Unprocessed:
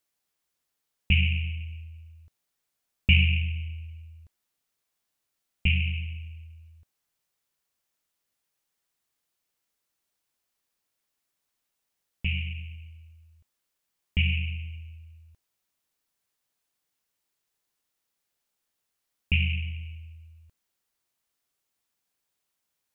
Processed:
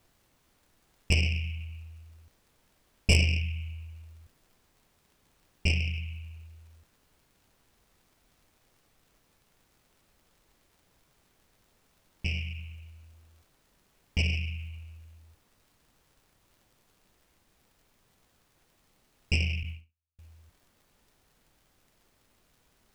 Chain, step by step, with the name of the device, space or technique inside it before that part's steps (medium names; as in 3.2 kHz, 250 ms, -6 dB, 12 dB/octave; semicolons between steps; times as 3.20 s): record under a worn stylus (tracing distortion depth 0.14 ms; crackle; pink noise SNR 32 dB); 19.63–20.19 s: gate -34 dBFS, range -47 dB; trim -3 dB